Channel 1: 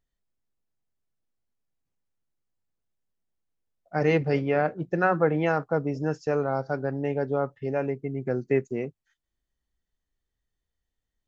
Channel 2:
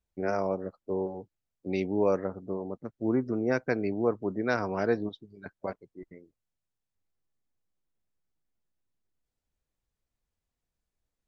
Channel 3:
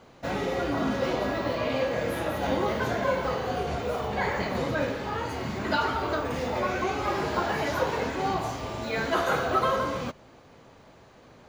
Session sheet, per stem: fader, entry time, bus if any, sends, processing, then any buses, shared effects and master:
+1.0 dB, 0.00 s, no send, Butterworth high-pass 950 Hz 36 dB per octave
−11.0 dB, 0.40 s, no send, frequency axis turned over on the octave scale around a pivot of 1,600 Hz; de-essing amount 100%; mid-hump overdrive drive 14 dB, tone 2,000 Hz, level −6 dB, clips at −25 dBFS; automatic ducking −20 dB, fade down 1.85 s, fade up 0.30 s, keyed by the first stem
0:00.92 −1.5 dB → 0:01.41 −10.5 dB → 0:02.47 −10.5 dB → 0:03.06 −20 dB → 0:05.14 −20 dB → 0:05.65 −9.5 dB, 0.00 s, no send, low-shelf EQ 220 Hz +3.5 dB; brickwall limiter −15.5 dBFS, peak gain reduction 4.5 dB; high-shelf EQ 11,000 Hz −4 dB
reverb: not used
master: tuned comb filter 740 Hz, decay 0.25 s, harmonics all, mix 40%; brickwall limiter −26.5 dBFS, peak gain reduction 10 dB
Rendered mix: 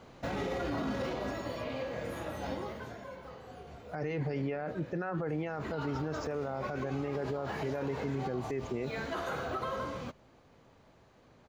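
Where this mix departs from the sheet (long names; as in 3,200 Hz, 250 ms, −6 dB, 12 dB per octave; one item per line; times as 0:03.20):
stem 1: missing Butterworth high-pass 950 Hz 36 dB per octave
master: missing tuned comb filter 740 Hz, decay 0.25 s, harmonics all, mix 40%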